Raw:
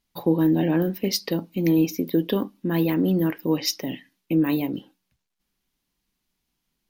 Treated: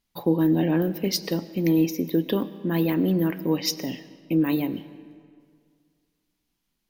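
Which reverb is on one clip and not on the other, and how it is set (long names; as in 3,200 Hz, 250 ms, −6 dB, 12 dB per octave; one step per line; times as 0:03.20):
comb and all-pass reverb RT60 2.1 s, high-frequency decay 0.7×, pre-delay 65 ms, DRR 15.5 dB
level −1 dB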